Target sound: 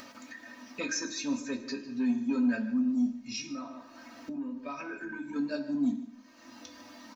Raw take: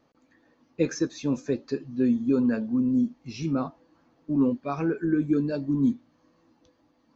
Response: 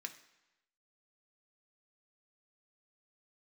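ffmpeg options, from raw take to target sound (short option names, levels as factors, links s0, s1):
-filter_complex "[0:a]asoftclip=type=tanh:threshold=0.188,equalizer=f=340:w=3.1:g=-11,aecho=1:1:151:0.126,asettb=1/sr,asplit=3[s0][s1][s2];[s0]atrim=end=3.164[s3];[s1]atrim=start=3.16:end=5.36,asetpts=PTS-STARTPTS,afade=t=in:d=0.004:c=qsin,afade=t=out:st=2.196:d=0.004:c=qsin,acompressor=threshold=0.0158:ratio=6[s4];[s2]atrim=start=5.356[s5];[s3][s4]acrossfade=d=0.004:c1=hsin:c2=qsin[s6];[s6][s5]acrossfade=d=0.004:c1=qsin:c2=hsin,highshelf=f=4100:g=8,aecho=1:1:3.2:0.89[s7];[1:a]atrim=start_sample=2205,afade=t=out:st=0.4:d=0.01,atrim=end_sample=18081[s8];[s7][s8]afir=irnorm=-1:irlink=0,acompressor=mode=upward:threshold=0.0251:ratio=2.5"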